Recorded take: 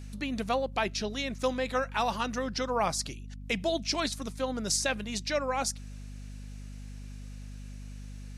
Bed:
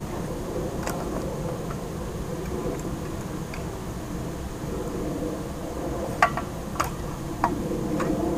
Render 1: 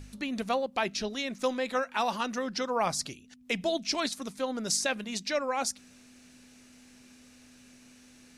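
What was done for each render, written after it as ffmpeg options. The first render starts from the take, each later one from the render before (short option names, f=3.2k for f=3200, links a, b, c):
-af "bandreject=f=50:t=h:w=4,bandreject=f=100:t=h:w=4,bandreject=f=150:t=h:w=4,bandreject=f=200:t=h:w=4"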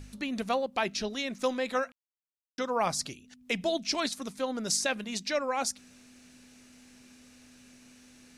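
-filter_complex "[0:a]asplit=3[a][b][c];[a]atrim=end=1.92,asetpts=PTS-STARTPTS,afade=t=out:st=1.916:d=0.004:c=hsin[d];[b]atrim=start=1.92:end=2.58,asetpts=PTS-STARTPTS,volume=0[e];[c]atrim=start=2.58,asetpts=PTS-STARTPTS,afade=t=in:d=0.004:c=hsin[f];[d][e][f]concat=n=3:v=0:a=1"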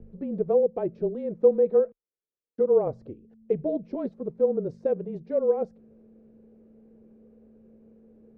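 -af "afreqshift=-28,lowpass=f=460:t=q:w=4.9"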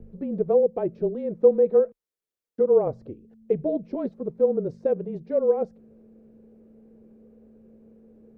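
-af "volume=2dB"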